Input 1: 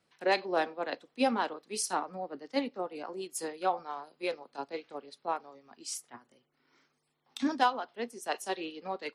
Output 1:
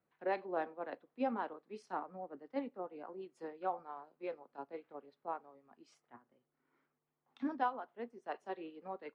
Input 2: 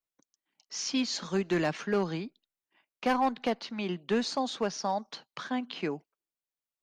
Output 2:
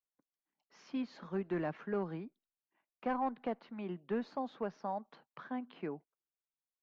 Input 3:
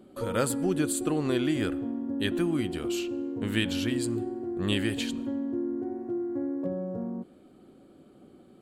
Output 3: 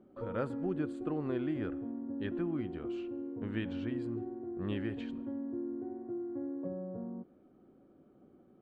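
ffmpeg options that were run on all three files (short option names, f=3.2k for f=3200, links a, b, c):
-af "lowpass=1.6k,volume=-7.5dB"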